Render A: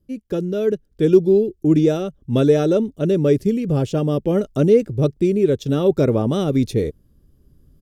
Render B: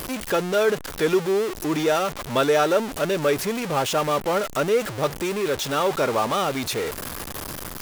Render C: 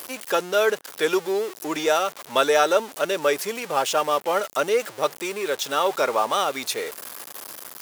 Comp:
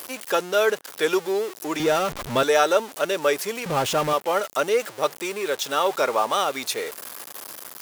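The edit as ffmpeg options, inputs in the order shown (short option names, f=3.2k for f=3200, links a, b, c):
-filter_complex "[1:a]asplit=2[a][b];[2:a]asplit=3[c][d][e];[c]atrim=end=1.802[f];[a]atrim=start=1.798:end=2.432[g];[d]atrim=start=2.428:end=3.662[h];[b]atrim=start=3.658:end=4.132[i];[e]atrim=start=4.128[j];[f][g]acrossfade=d=0.004:c1=hsin:c2=hsin[k];[k][h]acrossfade=d=0.004:c1=hsin:c2=hsin[l];[l][i]acrossfade=d=0.004:c1=hsin:c2=hsin[m];[m][j]acrossfade=d=0.004:c1=hsin:c2=hsin"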